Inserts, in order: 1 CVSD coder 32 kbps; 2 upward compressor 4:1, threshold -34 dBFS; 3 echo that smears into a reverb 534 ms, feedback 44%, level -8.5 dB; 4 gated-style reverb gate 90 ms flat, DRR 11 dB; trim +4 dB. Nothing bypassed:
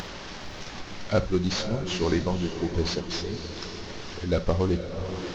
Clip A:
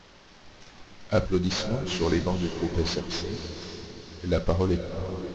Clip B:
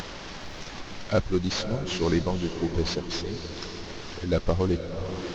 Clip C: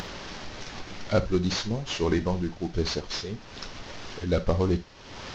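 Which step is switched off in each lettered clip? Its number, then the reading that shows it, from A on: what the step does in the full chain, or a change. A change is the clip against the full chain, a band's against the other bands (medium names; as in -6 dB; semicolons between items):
2, momentary loudness spread change -1 LU; 4, echo-to-direct -5.5 dB to -7.5 dB; 3, echo-to-direct -5.5 dB to -11.0 dB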